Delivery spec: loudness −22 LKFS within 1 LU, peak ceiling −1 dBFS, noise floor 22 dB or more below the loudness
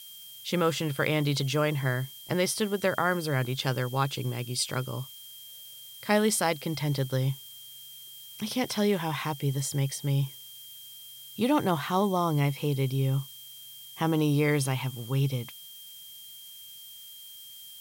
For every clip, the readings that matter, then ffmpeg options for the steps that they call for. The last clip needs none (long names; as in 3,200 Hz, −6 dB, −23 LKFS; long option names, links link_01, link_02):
interfering tone 3,200 Hz; level of the tone −47 dBFS; background noise floor −47 dBFS; target noise floor −51 dBFS; integrated loudness −28.5 LKFS; sample peak −10.0 dBFS; target loudness −22.0 LKFS
→ -af "bandreject=frequency=3200:width=30"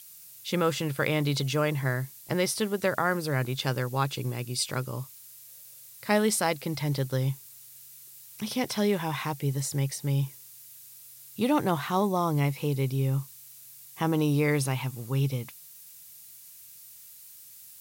interfering tone none found; background noise floor −49 dBFS; target noise floor −51 dBFS
→ -af "afftdn=noise_reduction=6:noise_floor=-49"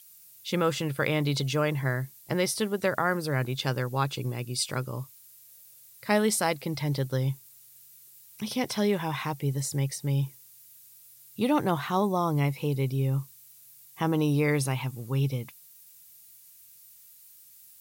background noise floor −54 dBFS; integrated loudness −28.5 LKFS; sample peak −10.5 dBFS; target loudness −22.0 LKFS
→ -af "volume=6.5dB"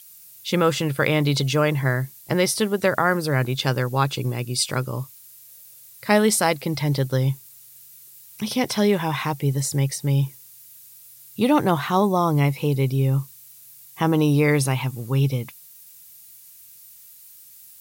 integrated loudness −22.0 LKFS; sample peak −4.0 dBFS; background noise floor −47 dBFS